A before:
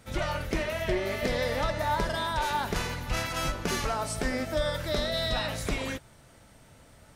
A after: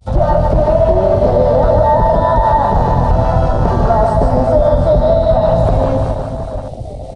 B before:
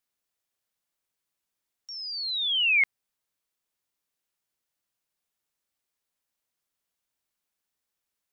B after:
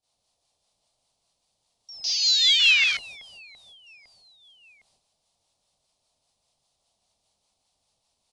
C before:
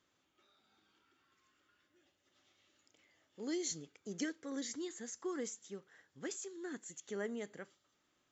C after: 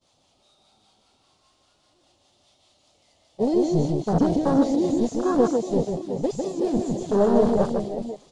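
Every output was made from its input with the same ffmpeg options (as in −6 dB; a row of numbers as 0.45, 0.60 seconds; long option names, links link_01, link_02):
-filter_complex "[0:a]aeval=exprs='val(0)+0.5*0.02*sgn(val(0))':channel_layout=same,agate=range=-41dB:threshold=-39dB:ratio=16:detection=peak,acompressor=threshold=-29dB:ratio=2.5,firequalizer=gain_entry='entry(100,0);entry(330,-9);entry(680,5);entry(1600,-8);entry(4200,1);entry(6700,-6)':delay=0.05:min_phase=1,aresample=22050,aresample=44100,acrossover=split=650[link_01][link_02];[link_01]aeval=exprs='val(0)*(1-0.5/2+0.5/2*cos(2*PI*5*n/s))':channel_layout=same[link_03];[link_02]aeval=exprs='val(0)*(1-0.5/2-0.5/2*cos(2*PI*5*n/s))':channel_layout=same[link_04];[link_03][link_04]amix=inputs=2:normalize=0,acrossover=split=2600[link_05][link_06];[link_06]acompressor=threshold=-50dB:ratio=4:attack=1:release=60[link_07];[link_05][link_07]amix=inputs=2:normalize=0,equalizer=frequency=1600:width_type=o:width=1.3:gain=-10.5,asplit=2[link_08][link_09];[link_09]aecho=0:1:150|375|712.5|1219|1978:0.631|0.398|0.251|0.158|0.1[link_10];[link_08][link_10]amix=inputs=2:normalize=0,afwtdn=0.00631,alimiter=level_in=24.5dB:limit=-1dB:release=50:level=0:latency=1,volume=-1dB"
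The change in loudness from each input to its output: +17.5, +5.5, +20.0 LU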